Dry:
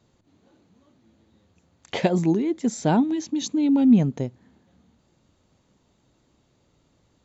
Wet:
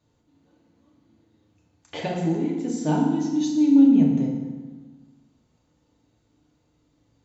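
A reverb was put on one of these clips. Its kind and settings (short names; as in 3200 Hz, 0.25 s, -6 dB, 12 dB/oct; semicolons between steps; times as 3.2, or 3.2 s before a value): FDN reverb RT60 1.3 s, low-frequency decay 1.3×, high-frequency decay 0.75×, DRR -3 dB; gain -8.5 dB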